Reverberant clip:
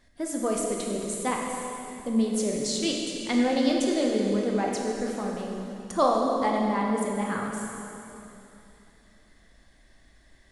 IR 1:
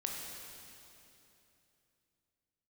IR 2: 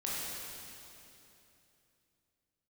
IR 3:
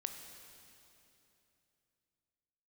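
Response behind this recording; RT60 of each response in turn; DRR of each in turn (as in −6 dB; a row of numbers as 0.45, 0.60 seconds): 1; 3.0, 3.0, 3.0 seconds; −1.0, −7.0, 5.0 decibels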